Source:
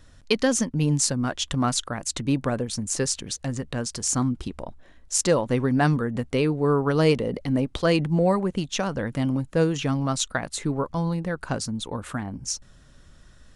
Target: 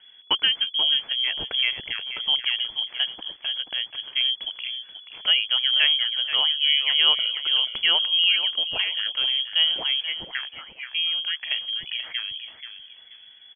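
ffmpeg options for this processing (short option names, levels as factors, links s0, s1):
-filter_complex "[0:a]asettb=1/sr,asplit=3[s0][s1][s2];[s0]atrim=end=10.004[s3];[s1]atrim=start=10:end=10.87,asetpts=PTS-STARTPTS,afade=t=in:d=0.004:c=qsin,afade=t=out:st=0.866:d=0.004:c=qsin,highpass=1300[s4];[s2]atrim=start=10.866[s5];[s3][s4]acrossfade=d=0.004:c1=hsin:c2=qsin[s6];[s6][s5]acrossfade=d=0.004:c1=qsin:c2=hsin,aecho=1:1:482|964|1446:0.299|0.0746|0.0187,lowpass=f=2900:t=q:w=0.5098,lowpass=f=2900:t=q:w=0.6013,lowpass=f=2900:t=q:w=0.9,lowpass=f=2900:t=q:w=2.563,afreqshift=-3400"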